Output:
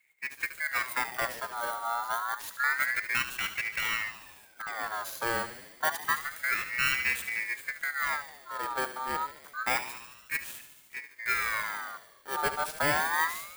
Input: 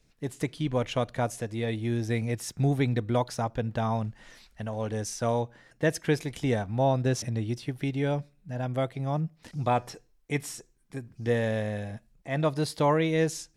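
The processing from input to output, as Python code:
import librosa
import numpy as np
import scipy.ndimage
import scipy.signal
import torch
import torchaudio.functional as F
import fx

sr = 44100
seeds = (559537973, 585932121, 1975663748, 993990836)

y = fx.bit_reversed(x, sr, seeds[0], block=16)
y = fx.echo_thinned(y, sr, ms=73, feedback_pct=73, hz=340.0, wet_db=-10)
y = fx.ring_lfo(y, sr, carrier_hz=1600.0, swing_pct=35, hz=0.28)
y = y * 10.0 ** (-1.0 / 20.0)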